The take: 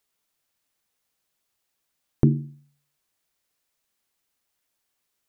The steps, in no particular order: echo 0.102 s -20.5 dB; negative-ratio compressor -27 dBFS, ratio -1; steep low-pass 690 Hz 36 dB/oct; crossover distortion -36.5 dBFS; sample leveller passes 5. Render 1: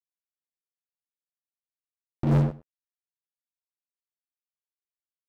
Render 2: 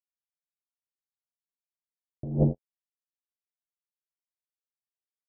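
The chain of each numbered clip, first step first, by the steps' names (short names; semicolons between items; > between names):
negative-ratio compressor > crossover distortion > steep low-pass > sample leveller > echo; crossover distortion > sample leveller > echo > negative-ratio compressor > steep low-pass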